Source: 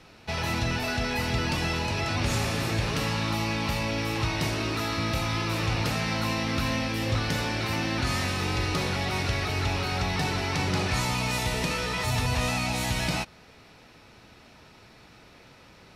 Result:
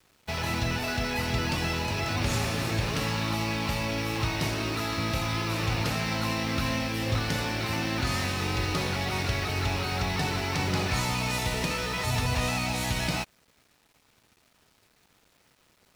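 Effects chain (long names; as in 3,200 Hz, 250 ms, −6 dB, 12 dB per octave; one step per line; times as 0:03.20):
bit-depth reduction 8 bits, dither none
dead-zone distortion −44.5 dBFS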